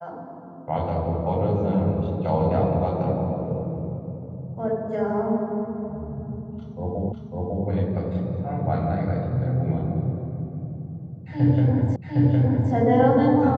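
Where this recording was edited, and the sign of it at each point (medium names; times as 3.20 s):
7.12 s: repeat of the last 0.55 s
11.96 s: repeat of the last 0.76 s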